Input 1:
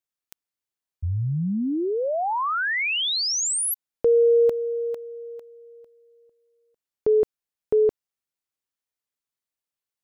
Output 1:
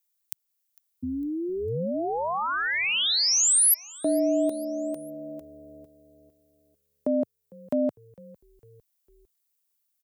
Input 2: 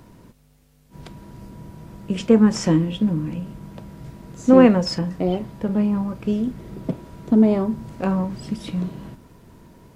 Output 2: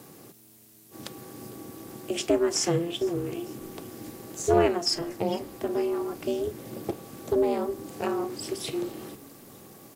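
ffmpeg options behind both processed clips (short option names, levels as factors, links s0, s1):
-filter_complex "[0:a]aeval=exprs='val(0)*sin(2*PI*170*n/s)':c=same,highpass=f=110:w=0.5412,highpass=f=110:w=1.3066,aemphasis=mode=production:type=75kf,acompressor=threshold=0.0355:ratio=1.5:attack=5.4:release=579:knee=6:detection=rms,asplit=2[s0][s1];[s1]asplit=3[s2][s3][s4];[s2]adelay=453,afreqshift=-73,volume=0.0708[s5];[s3]adelay=906,afreqshift=-146,volume=0.0347[s6];[s4]adelay=1359,afreqshift=-219,volume=0.017[s7];[s5][s6][s7]amix=inputs=3:normalize=0[s8];[s0][s8]amix=inputs=2:normalize=0,volume=1.19"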